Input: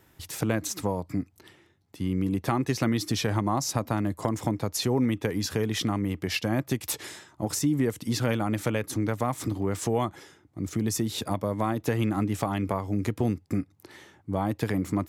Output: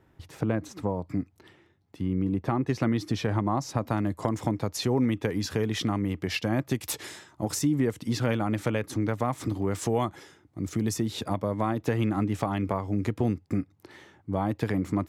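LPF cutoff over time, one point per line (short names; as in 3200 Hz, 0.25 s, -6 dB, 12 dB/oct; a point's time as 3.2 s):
LPF 6 dB/oct
1100 Hz
from 1.02 s 2800 Hz
from 2.01 s 1200 Hz
from 2.69 s 2000 Hz
from 3.82 s 5100 Hz
from 6.75 s 11000 Hz
from 7.67 s 4300 Hz
from 9.49 s 9800 Hz
from 10.94 s 4000 Hz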